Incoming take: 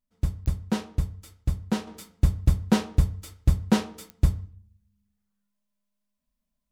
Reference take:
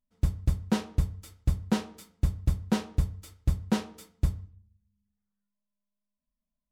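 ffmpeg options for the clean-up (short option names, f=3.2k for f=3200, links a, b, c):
-af "adeclick=t=4,asetnsamples=n=441:p=0,asendcmd='1.87 volume volume -5.5dB',volume=0dB"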